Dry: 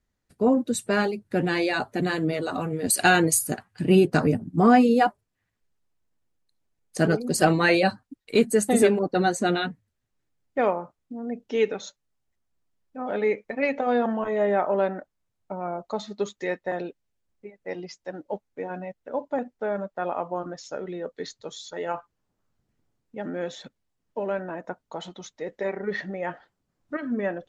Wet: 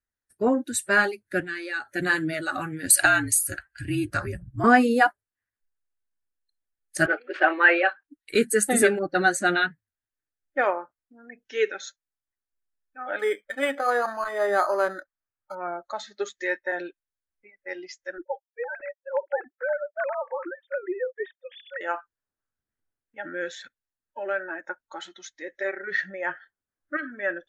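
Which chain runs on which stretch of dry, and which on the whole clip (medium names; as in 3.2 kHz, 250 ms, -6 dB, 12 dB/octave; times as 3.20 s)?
1.40–1.91 s: compression, threshold -30 dBFS + transformer saturation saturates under 370 Hz
3.05–4.64 s: compression 1.5:1, threshold -31 dBFS + frequency shift -51 Hz
7.06–8.05 s: CVSD coder 64 kbps + Chebyshev band-pass 370–2800 Hz, order 3
13.19–15.55 s: peaking EQ 1.2 kHz +9 dB 0.24 oct + decimation joined by straight lines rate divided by 8×
18.18–21.81 s: formants replaced by sine waves + tilt EQ -2.5 dB/octave
whole clip: dynamic bell 160 Hz, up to +5 dB, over -44 dBFS, Q 6; spectral noise reduction 15 dB; fifteen-band graphic EQ 160 Hz -9 dB, 1.6 kHz +11 dB, 10 kHz +9 dB; trim -1 dB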